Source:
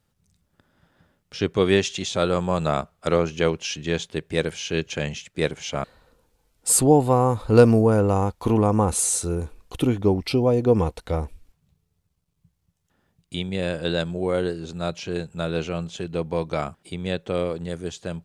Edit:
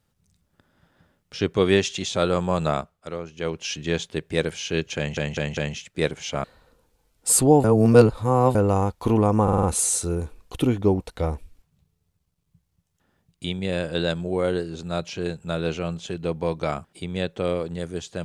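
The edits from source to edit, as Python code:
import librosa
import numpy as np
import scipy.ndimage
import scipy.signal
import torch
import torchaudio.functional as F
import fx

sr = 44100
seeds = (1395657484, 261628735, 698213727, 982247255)

y = fx.edit(x, sr, fx.fade_down_up(start_s=2.68, length_s=1.04, db=-12.0, fade_s=0.37),
    fx.stutter(start_s=4.97, slice_s=0.2, count=4),
    fx.reverse_span(start_s=7.04, length_s=0.91),
    fx.stutter(start_s=8.83, slice_s=0.05, count=5),
    fx.cut(start_s=10.2, length_s=0.7), tone=tone)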